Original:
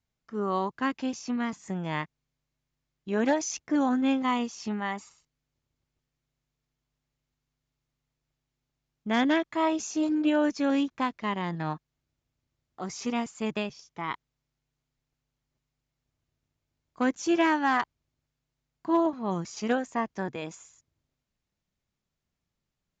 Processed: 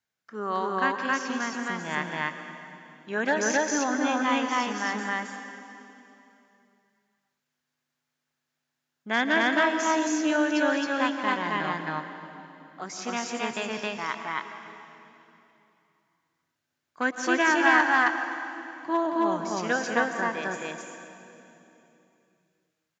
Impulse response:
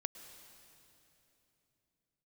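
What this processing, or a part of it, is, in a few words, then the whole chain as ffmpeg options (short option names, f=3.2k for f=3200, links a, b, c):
stadium PA: -filter_complex "[0:a]highpass=120,lowshelf=f=350:g=-10.5,equalizer=f=1.6k:t=o:w=0.4:g=8,aecho=1:1:172|268.2:0.282|1[a];[1:a]atrim=start_sample=2205[b];[a][b]afir=irnorm=-1:irlink=0,volume=3.5dB"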